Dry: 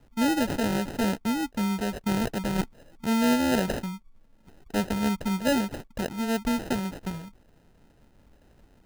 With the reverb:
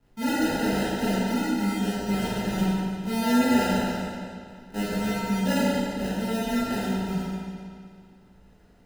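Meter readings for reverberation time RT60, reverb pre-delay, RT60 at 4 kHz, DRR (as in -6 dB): 2.2 s, 16 ms, 1.9 s, -11.0 dB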